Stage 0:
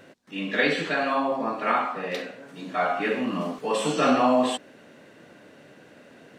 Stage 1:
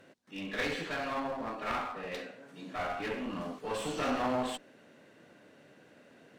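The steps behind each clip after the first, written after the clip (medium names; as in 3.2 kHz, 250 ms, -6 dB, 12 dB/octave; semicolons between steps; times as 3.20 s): one-sided clip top -30 dBFS; trim -8 dB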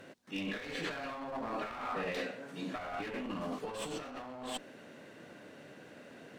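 compressor with a negative ratio -41 dBFS, ratio -1; trim +1 dB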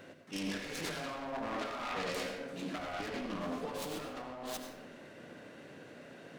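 self-modulated delay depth 0.36 ms; on a send at -6 dB: reverberation RT60 0.95 s, pre-delay 75 ms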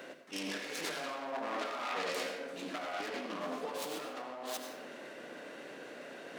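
high-pass 320 Hz 12 dB/octave; reverse; upward compressor, threshold -42 dBFS; reverse; trim +1.5 dB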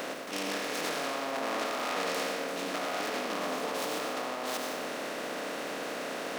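spectral levelling over time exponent 0.4; crackle 340 per s -40 dBFS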